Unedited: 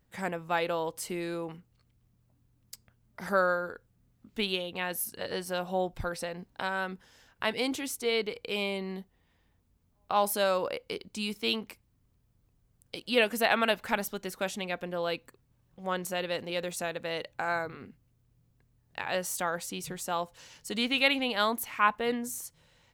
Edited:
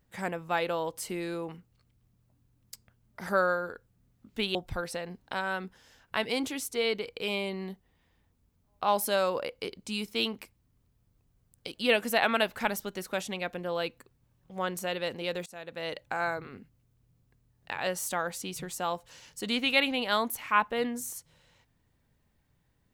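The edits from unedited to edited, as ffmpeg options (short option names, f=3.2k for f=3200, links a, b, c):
-filter_complex "[0:a]asplit=3[a][b][c];[a]atrim=end=4.552[d];[b]atrim=start=5.828:end=16.74,asetpts=PTS-STARTPTS,afade=t=out:st=10.908:d=0.004:c=hsin:silence=0.0794328[e];[c]atrim=start=16.74,asetpts=PTS-STARTPTS,afade=t=in:d=0.47:silence=0.0794328[f];[e][f]concat=n=2:v=0:a=1[g];[d][g]acrossfade=d=0.004:c1=hsin:c2=hsin"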